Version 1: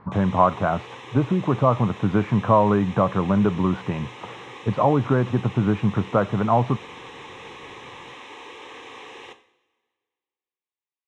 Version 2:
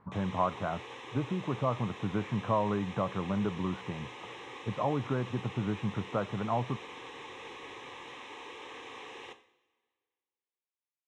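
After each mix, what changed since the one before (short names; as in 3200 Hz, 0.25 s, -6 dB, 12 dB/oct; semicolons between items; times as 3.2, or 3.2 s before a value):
speech -12.0 dB; background -5.0 dB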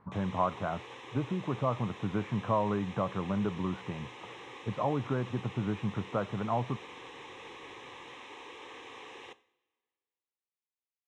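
background: send -7.5 dB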